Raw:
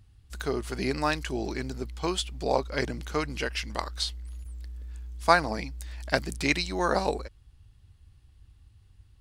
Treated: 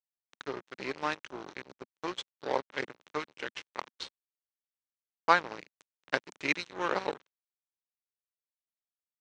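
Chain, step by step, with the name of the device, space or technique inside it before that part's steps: blown loudspeaker (crossover distortion -29.5 dBFS; speaker cabinet 200–5600 Hz, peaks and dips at 230 Hz -7 dB, 690 Hz -7 dB, 4800 Hz -9 dB)

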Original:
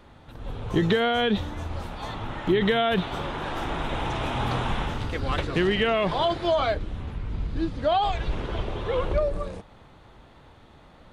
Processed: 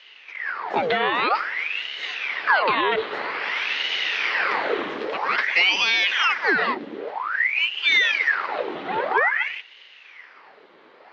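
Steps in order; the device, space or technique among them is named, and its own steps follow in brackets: voice changer toy (ring modulator with a swept carrier 1600 Hz, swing 85%, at 0.51 Hz; speaker cabinet 420–4800 Hz, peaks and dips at 430 Hz +4 dB, 670 Hz -3 dB, 2000 Hz +5 dB, 3700 Hz -3 dB); gain +5.5 dB

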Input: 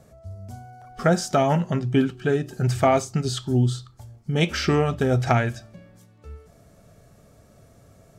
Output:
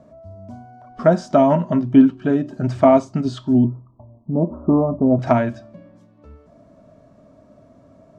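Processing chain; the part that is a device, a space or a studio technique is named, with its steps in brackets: 3.64–5.19 steep low-pass 1100 Hz 72 dB/oct; inside a cardboard box (LPF 5300 Hz 12 dB/oct; small resonant body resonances 270/610/960 Hz, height 17 dB, ringing for 30 ms); gain -6 dB

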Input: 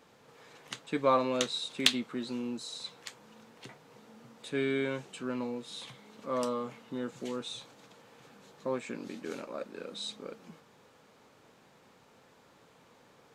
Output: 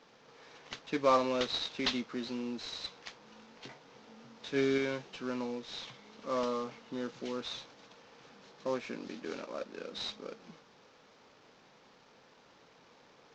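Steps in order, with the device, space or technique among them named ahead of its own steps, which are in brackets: early wireless headset (HPF 170 Hz 6 dB/oct; CVSD 32 kbps); 3.24–4.78 doubler 22 ms -7 dB

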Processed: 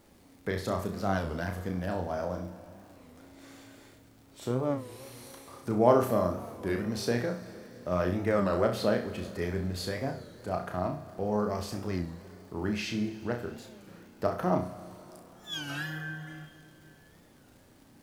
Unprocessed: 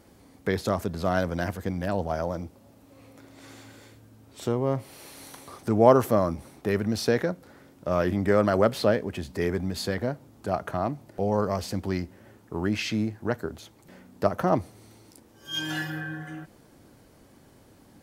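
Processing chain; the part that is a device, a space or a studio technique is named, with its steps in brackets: flutter echo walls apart 5.7 m, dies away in 0.36 s; plate-style reverb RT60 4 s, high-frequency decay 0.95×, DRR 13 dB; warped LP (record warp 33 1/3 rpm, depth 160 cents; crackle 110/s -44 dBFS; pink noise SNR 36 dB); gain -6 dB

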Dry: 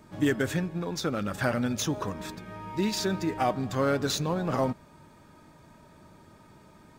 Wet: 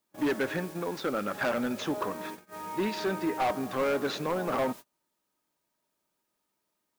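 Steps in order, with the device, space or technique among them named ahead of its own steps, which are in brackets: aircraft radio (BPF 300–2500 Hz; hard clip -26.5 dBFS, distortion -9 dB; white noise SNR 19 dB; gate -43 dBFS, range -31 dB); gain +3 dB

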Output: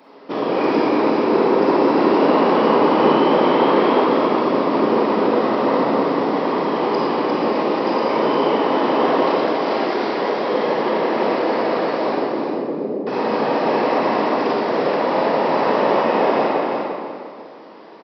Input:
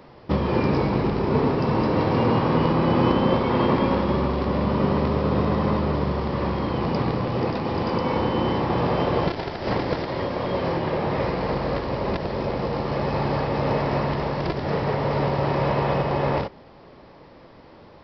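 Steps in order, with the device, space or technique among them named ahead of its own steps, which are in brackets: 12.14–13.07 inverse Chebyshev low-pass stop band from 1900 Hz, stop band 70 dB; whispering ghost (whisperiser; HPF 250 Hz 24 dB/oct; reverb RT60 1.9 s, pre-delay 31 ms, DRR -4 dB); feedback echo 0.351 s, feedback 21%, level -5 dB

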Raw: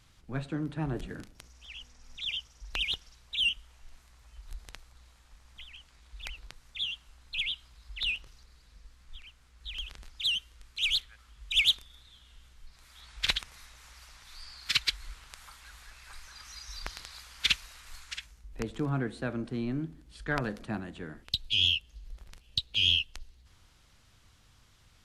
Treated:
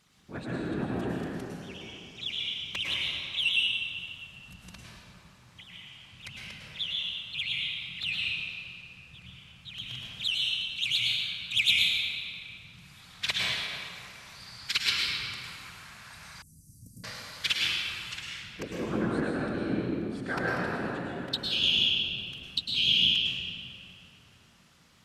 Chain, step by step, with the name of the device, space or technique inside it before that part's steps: whispering ghost (whisperiser; HPF 220 Hz 6 dB/oct; reverb RT60 2.9 s, pre-delay 98 ms, DRR -5 dB); 16.42–17.04 elliptic band-stop 290–8800 Hz, stop band 50 dB; gain -1.5 dB

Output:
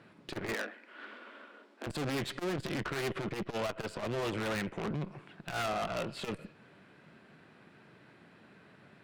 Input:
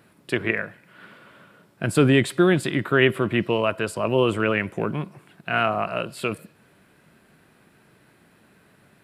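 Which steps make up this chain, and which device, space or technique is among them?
valve radio (BPF 100–4500 Hz; tube stage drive 33 dB, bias 0.65; core saturation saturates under 210 Hz); 0.54–1.87 steep high-pass 220 Hz 96 dB/oct; gain +2.5 dB

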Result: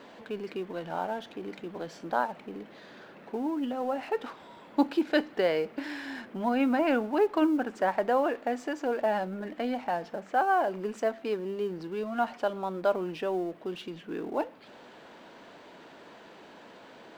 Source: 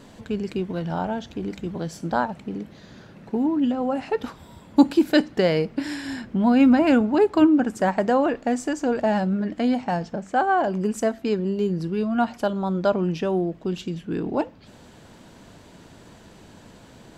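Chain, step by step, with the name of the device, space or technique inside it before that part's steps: phone line with mismatched companding (BPF 380–3300 Hz; G.711 law mismatch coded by mu); gain -4.5 dB

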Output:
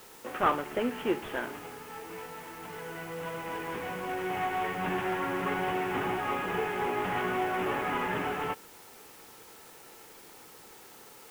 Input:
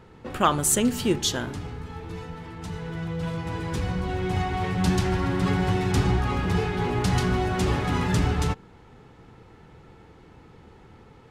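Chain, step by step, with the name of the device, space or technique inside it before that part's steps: army field radio (BPF 400–2900 Hz; CVSD 16 kbps; white noise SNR 20 dB)

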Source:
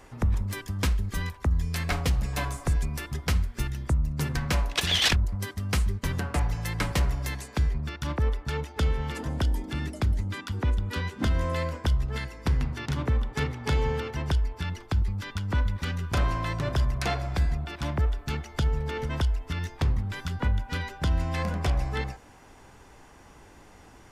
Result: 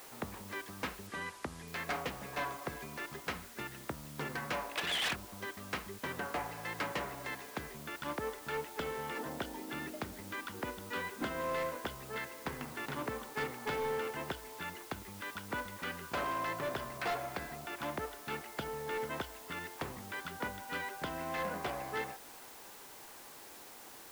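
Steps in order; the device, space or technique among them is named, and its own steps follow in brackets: aircraft radio (BPF 350–2500 Hz; hard clip -29.5 dBFS, distortion -11 dB; white noise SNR 13 dB); 1.07–1.68 LPF 11000 Hz 24 dB/oct; gain -1.5 dB

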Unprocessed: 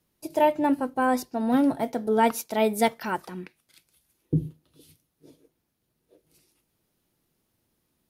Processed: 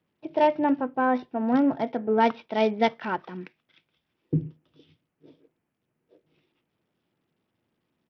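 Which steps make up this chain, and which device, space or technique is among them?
Bluetooth headset (HPF 110 Hz 12 dB/oct; downsampling 8000 Hz; SBC 64 kbps 44100 Hz)

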